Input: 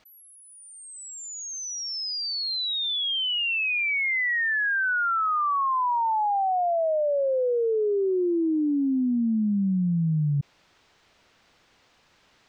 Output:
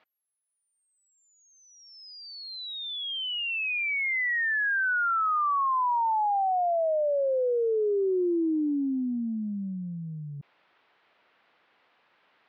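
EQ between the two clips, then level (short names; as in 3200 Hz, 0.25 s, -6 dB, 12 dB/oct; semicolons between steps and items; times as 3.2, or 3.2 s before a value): weighting filter A; dynamic EQ 320 Hz, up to +5 dB, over -42 dBFS, Q 1.1; air absorption 370 m; 0.0 dB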